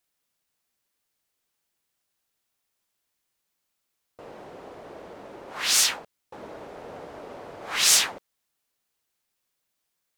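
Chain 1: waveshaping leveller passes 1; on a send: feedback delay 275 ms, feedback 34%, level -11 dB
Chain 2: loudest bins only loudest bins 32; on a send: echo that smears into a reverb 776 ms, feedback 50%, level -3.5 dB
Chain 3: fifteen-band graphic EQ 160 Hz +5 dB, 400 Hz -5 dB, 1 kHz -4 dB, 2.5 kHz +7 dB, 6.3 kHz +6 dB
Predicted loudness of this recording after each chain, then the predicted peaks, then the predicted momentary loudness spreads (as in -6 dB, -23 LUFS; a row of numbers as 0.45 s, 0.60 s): -18.5 LUFS, -30.0 LUFS, -16.5 LUFS; -5.5 dBFS, -13.0 dBFS, -2.0 dBFS; 23 LU, 19 LU, 14 LU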